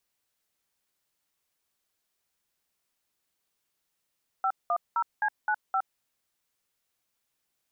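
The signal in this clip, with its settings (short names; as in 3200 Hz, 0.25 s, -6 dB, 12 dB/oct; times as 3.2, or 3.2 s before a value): DTMF "510C95", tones 65 ms, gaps 0.195 s, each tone -26 dBFS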